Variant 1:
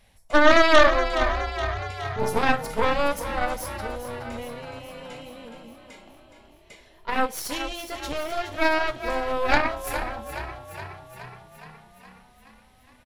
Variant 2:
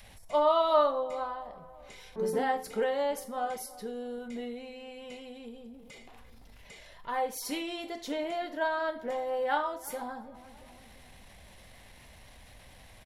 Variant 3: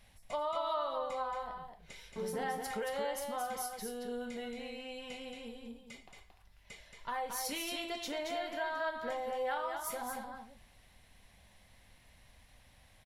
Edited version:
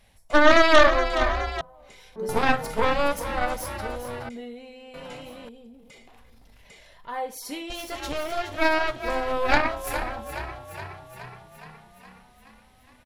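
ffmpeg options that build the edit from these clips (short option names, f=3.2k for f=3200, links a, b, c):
-filter_complex "[1:a]asplit=3[a][b][c];[0:a]asplit=4[d][e][f][g];[d]atrim=end=1.612[h];[a]atrim=start=1.608:end=2.292[i];[e]atrim=start=2.288:end=4.292[j];[b]atrim=start=4.288:end=4.942[k];[f]atrim=start=4.938:end=5.492[l];[c]atrim=start=5.488:end=7.702[m];[g]atrim=start=7.698[n];[h][i]acrossfade=d=0.004:c1=hsin:c2=hsin[o];[o][j]acrossfade=d=0.004:c1=hsin:c2=hsin[p];[p][k]acrossfade=d=0.004:c1=hsin:c2=hsin[q];[q][l]acrossfade=d=0.004:c1=hsin:c2=hsin[r];[r][m]acrossfade=d=0.004:c1=hsin:c2=hsin[s];[s][n]acrossfade=d=0.004:c1=hsin:c2=hsin"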